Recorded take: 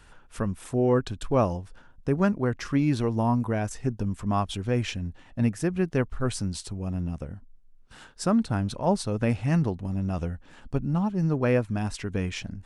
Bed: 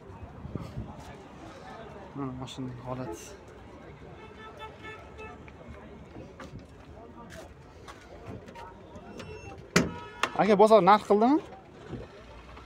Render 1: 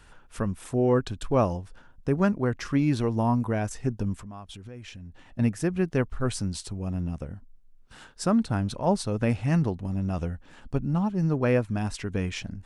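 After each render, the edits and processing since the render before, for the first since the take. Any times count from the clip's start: 4.19–5.39 s: compression 4:1, threshold -41 dBFS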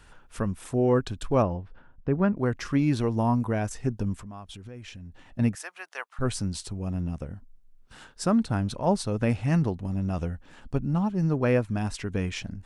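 1.42–2.37 s: distance through air 340 m; 5.55–6.19 s: high-pass 780 Hz 24 dB/octave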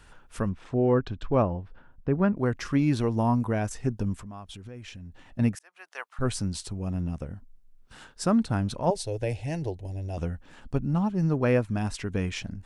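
0.49–1.58 s: distance through air 190 m; 5.59–6.09 s: fade in; 8.90–10.18 s: static phaser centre 510 Hz, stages 4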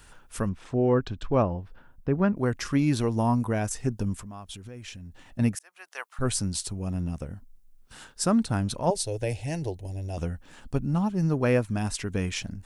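treble shelf 6.3 kHz +11.5 dB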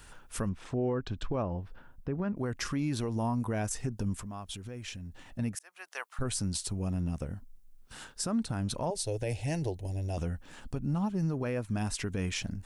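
compression 2.5:1, threshold -28 dBFS, peak gain reduction 7.5 dB; peak limiter -23 dBFS, peak gain reduction 7 dB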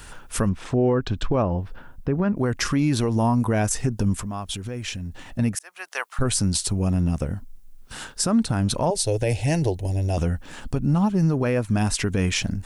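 trim +10.5 dB

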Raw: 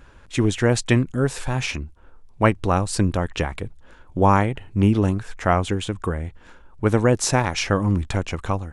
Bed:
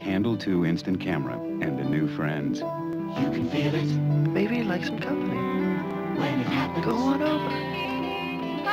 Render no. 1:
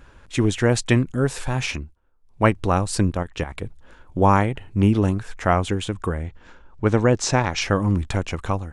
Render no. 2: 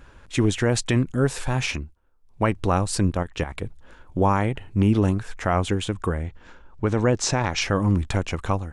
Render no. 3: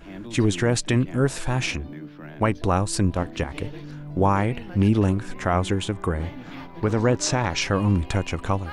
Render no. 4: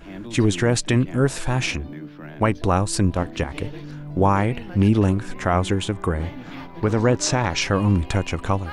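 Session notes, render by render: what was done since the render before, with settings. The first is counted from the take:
1.76–2.44 s: dip -18.5 dB, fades 0.24 s; 3.10–3.62 s: level held to a coarse grid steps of 11 dB; 6.23–7.62 s: low-pass 7.3 kHz 24 dB/octave
peak limiter -9.5 dBFS, peak gain reduction 7 dB
add bed -13 dB
trim +2 dB

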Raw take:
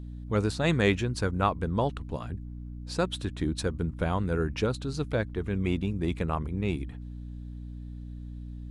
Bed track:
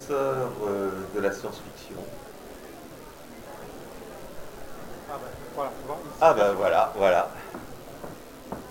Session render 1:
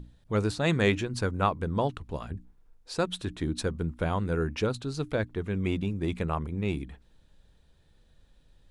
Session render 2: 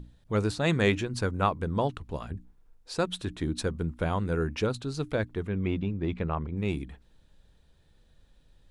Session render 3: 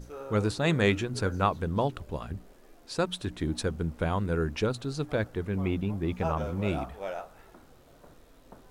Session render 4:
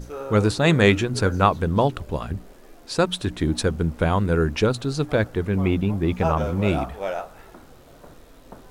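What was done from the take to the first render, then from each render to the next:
hum notches 60/120/180/240/300 Hz
5.47–6.57 s: distance through air 200 m
add bed track -15.5 dB
trim +8 dB

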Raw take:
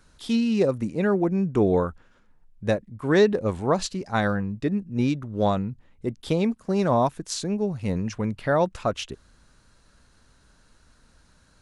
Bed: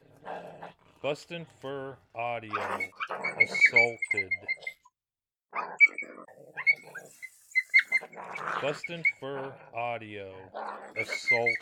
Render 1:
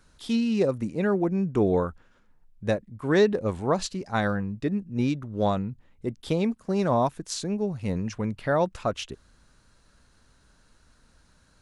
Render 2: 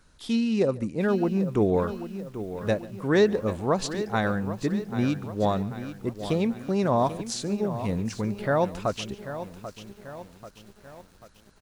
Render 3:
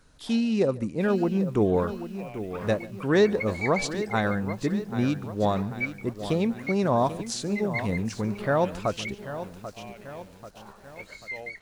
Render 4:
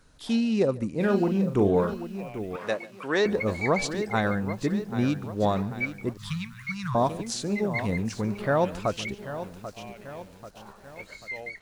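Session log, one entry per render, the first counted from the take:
trim -2 dB
delay 143 ms -21 dB; bit-crushed delay 789 ms, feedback 55%, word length 8-bit, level -11.5 dB
add bed -11.5 dB
0.89–1.94 s: doubling 40 ms -7.5 dB; 2.56–3.26 s: frequency weighting A; 6.17–6.95 s: inverse Chebyshev band-stop 260–740 Hz

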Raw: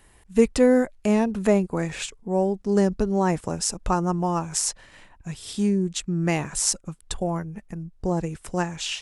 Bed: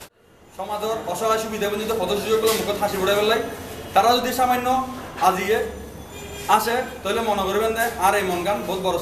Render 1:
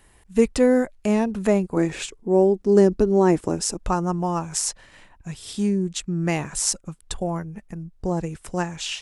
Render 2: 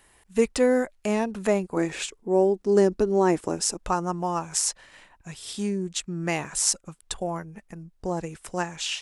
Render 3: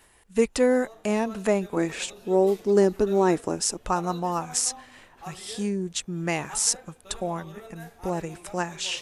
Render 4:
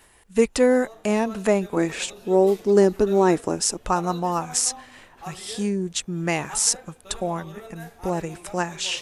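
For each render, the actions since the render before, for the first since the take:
1.76–3.77 s: peaking EQ 340 Hz +10.5 dB
bass shelf 290 Hz -9.5 dB
add bed -24 dB
trim +3 dB; peak limiter -3 dBFS, peak gain reduction 1 dB

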